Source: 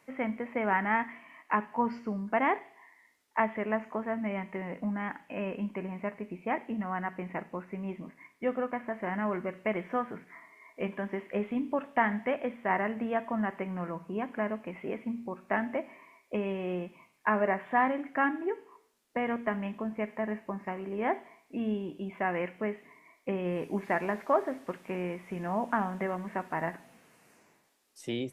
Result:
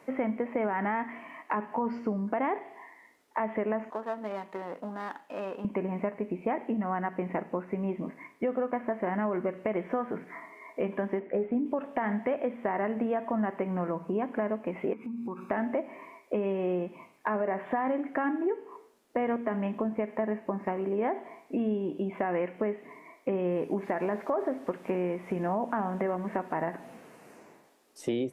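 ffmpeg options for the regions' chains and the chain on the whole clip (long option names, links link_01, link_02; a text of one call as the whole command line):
ffmpeg -i in.wav -filter_complex "[0:a]asettb=1/sr,asplit=3[link_01][link_02][link_03];[link_01]atrim=end=3.904[link_04];[link_02]atrim=start=3.9:end=5.65,asetpts=PTS-STARTPTS,afade=type=in:duration=0.004:curve=qsin,afade=type=out:start_time=1.746:duration=0.004:curve=qsin,aeval=exprs='if(lt(val(0),0),0.447*val(0),val(0))':channel_layout=same,highpass=frequency=1100:poles=1,equalizer=frequency=2200:width_type=o:width=0.59:gain=-9.5[link_05];[link_03]atrim=start=5.646[link_06];[link_04][link_05]acrossfade=duration=0.004:curve1=hsin:curve2=qsin[link_07];[link_07][link_06]acrossfade=duration=0.004:curve1=qsin:curve2=hsin,asettb=1/sr,asplit=3[link_08][link_09][link_10];[link_08]atrim=end=11.194[link_11];[link_09]atrim=start=11.19:end=11.66,asetpts=PTS-STARTPTS,afade=type=in:duration=0.004:curve=qsin,afade=type=out:start_time=0.466:duration=0.004:curve=qsin,lowpass=1600,equalizer=frequency=1100:width=4:gain=-11.5,asplit=2[link_12][link_13];[link_13]adelay=17,volume=-11dB[link_14];[link_12][link_14]amix=inputs=2:normalize=0,atrim=end_sample=20727[link_15];[link_10]atrim=start=11.656[link_16];[link_11][link_15]acrossfade=duration=0.004:curve1=hsin:curve2=qsin[link_17];[link_17][link_16]acrossfade=duration=0.004:curve1=qsin:curve2=hsin,asettb=1/sr,asplit=3[link_18][link_19][link_20];[link_18]atrim=end=14.934[link_21];[link_19]atrim=start=14.93:end=15.51,asetpts=PTS-STARTPTS,afade=type=in:duration=0.004:curve=qsin,afade=type=out:start_time=0.576:duration=0.004:curve=qsin,highpass=110,aecho=1:1:0.8:0.95,atrim=end_sample=25578,acompressor=threshold=-44dB:ratio=6:attack=3.2:release=140:knee=1:detection=peak[link_22];[link_20]atrim=start=15.506[link_23];[link_21][link_22]acrossfade=duration=0.004:curve1=hsin:curve2=qsin[link_24];[link_24][link_23]acrossfade=duration=0.004:curve1=qsin:curve2=hsin,equalizer=frequency=440:width=0.38:gain=11,alimiter=limit=-14dB:level=0:latency=1:release=57,acompressor=threshold=-32dB:ratio=2.5,volume=2dB" out.wav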